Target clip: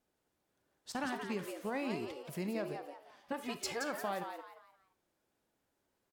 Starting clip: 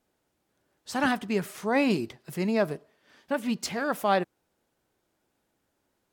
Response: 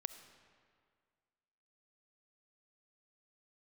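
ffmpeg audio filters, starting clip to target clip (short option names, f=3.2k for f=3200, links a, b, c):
-filter_complex "[0:a]asettb=1/sr,asplit=3[a][b][c];[a]atrim=end=0.924[d];[b]atrim=start=0.92:end=2.2,asetpts=PTS-STARTPTS,afade=t=in:d=0.004:c=qsin,afade=t=out:st=1.276:d=0.004:c=qsin,agate=range=-12dB:threshold=-38dB:ratio=16:detection=peak[e];[c]atrim=start=2.196[f];[d][e]acrossfade=d=0.004:c1=hsin:c2=qsin[g];[g][f]acrossfade=d=0.004:c1=qsin:c2=hsin,asettb=1/sr,asplit=3[h][i][j];[h]atrim=end=3.324[k];[i]atrim=start=3.32:end=3.84,asetpts=PTS-STARTPTS,afade=t=in:d=0.004:c=qsin,afade=t=out:st=0.516:d=0.004:c=qsin,aecho=1:1:2.4:0.77,atrim=end_sample=22932[l];[j]atrim=start=3.836[m];[k][l]acrossfade=d=0.004:c1=hsin:c2=qsin[n];[n][m]acrossfade=d=0.004:c1=qsin:c2=hsin,acompressor=threshold=-28dB:ratio=6,asplit=5[o][p][q][r][s];[p]adelay=174,afreqshift=140,volume=-7dB[t];[q]adelay=348,afreqshift=280,volume=-16.6dB[u];[r]adelay=522,afreqshift=420,volume=-26.3dB[v];[s]adelay=696,afreqshift=560,volume=-35.9dB[w];[o][t][u][v][w]amix=inputs=5:normalize=0[x];[1:a]atrim=start_sample=2205,afade=t=out:st=0.22:d=0.01,atrim=end_sample=10143,asetrate=79380,aresample=44100[y];[x][y]afir=irnorm=-1:irlink=0,volume=1.5dB"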